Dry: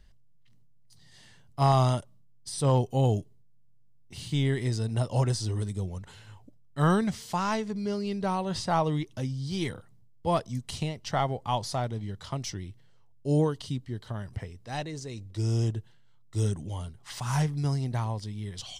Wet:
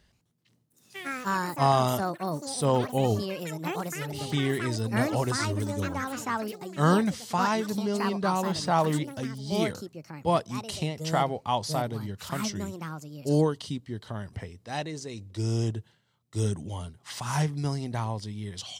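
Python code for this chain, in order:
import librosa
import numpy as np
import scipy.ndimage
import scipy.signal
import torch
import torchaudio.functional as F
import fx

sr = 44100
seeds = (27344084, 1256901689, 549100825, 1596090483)

y = scipy.signal.sosfilt(scipy.signal.butter(2, 91.0, 'highpass', fs=sr, output='sos'), x)
y = fx.peak_eq(y, sr, hz=130.0, db=-8.0, octaves=0.22)
y = fx.echo_pitch(y, sr, ms=128, semitones=6, count=3, db_per_echo=-6.0)
y = y * 10.0 ** (2.0 / 20.0)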